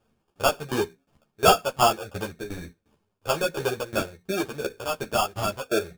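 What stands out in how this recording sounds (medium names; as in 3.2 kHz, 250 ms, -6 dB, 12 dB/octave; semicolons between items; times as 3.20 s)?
a quantiser's noise floor 12-bit, dither none; tremolo saw down 2.8 Hz, depth 90%; aliases and images of a low sample rate 2 kHz, jitter 0%; a shimmering, thickened sound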